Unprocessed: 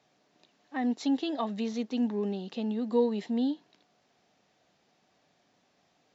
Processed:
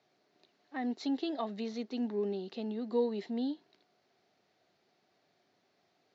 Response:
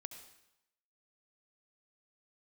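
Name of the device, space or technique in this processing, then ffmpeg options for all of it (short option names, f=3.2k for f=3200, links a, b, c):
car door speaker: -af "highpass=91,equalizer=f=100:t=q:w=4:g=6,equalizer=f=380:t=q:w=4:g=9,equalizer=f=670:t=q:w=4:g=4,equalizer=f=1.4k:t=q:w=4:g=4,equalizer=f=2.1k:t=q:w=4:g=4,equalizer=f=4.3k:t=q:w=4:g=6,lowpass=f=6.7k:w=0.5412,lowpass=f=6.7k:w=1.3066,volume=-7dB"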